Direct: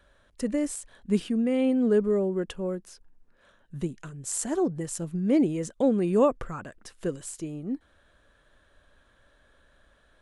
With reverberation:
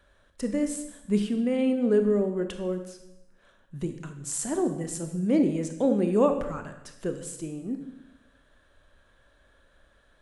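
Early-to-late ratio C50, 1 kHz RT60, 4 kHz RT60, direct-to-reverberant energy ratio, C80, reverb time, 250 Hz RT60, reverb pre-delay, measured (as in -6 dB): 9.0 dB, 0.85 s, 0.85 s, 6.5 dB, 11.0 dB, 0.90 s, 1.0 s, 23 ms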